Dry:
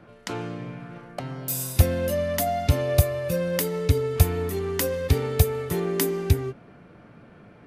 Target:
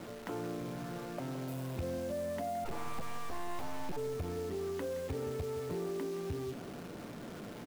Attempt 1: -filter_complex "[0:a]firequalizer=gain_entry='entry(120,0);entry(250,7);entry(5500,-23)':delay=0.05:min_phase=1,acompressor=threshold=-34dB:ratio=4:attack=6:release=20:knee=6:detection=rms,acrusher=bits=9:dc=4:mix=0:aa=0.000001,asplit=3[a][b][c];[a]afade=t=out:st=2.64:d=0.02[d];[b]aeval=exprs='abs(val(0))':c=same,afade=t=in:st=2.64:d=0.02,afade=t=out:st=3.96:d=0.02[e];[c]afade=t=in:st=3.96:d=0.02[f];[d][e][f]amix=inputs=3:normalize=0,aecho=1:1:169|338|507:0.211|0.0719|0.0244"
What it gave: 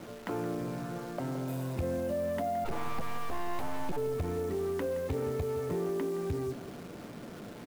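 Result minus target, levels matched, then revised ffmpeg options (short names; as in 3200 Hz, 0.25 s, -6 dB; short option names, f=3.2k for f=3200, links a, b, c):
compressor: peak gain reduction -5 dB
-filter_complex "[0:a]firequalizer=gain_entry='entry(120,0);entry(250,7);entry(5500,-23)':delay=0.05:min_phase=1,acompressor=threshold=-40.5dB:ratio=4:attack=6:release=20:knee=6:detection=rms,acrusher=bits=9:dc=4:mix=0:aa=0.000001,asplit=3[a][b][c];[a]afade=t=out:st=2.64:d=0.02[d];[b]aeval=exprs='abs(val(0))':c=same,afade=t=in:st=2.64:d=0.02,afade=t=out:st=3.96:d=0.02[e];[c]afade=t=in:st=3.96:d=0.02[f];[d][e][f]amix=inputs=3:normalize=0,aecho=1:1:169|338|507:0.211|0.0719|0.0244"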